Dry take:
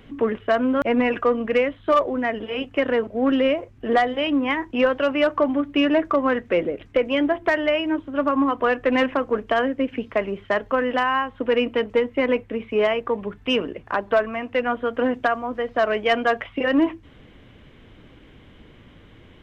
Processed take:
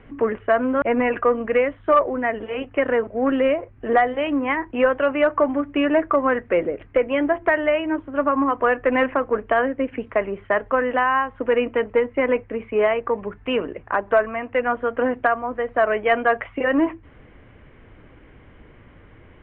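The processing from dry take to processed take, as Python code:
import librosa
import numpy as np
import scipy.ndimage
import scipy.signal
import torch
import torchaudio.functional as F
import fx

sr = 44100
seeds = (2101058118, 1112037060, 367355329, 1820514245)

y = scipy.signal.sosfilt(scipy.signal.butter(4, 2300.0, 'lowpass', fs=sr, output='sos'), x)
y = fx.peak_eq(y, sr, hz=210.0, db=-5.0, octaves=1.5)
y = y * librosa.db_to_amplitude(2.5)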